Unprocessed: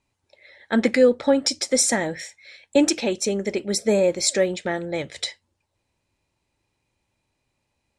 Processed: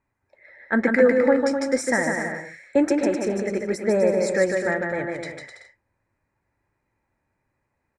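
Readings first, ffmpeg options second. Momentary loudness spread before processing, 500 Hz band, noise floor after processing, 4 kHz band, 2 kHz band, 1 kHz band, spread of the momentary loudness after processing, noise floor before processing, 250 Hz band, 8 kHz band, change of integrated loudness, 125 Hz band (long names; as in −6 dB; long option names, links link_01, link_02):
12 LU, +1.0 dB, −77 dBFS, −13.5 dB, +4.5 dB, +2.0 dB, 13 LU, −76 dBFS, +0.5 dB, −11.5 dB, −0.5 dB, 0.0 dB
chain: -af "highshelf=frequency=2400:width_type=q:width=3:gain=-10.5,aecho=1:1:150|255|328.5|380|416:0.631|0.398|0.251|0.158|0.1,volume=-2dB"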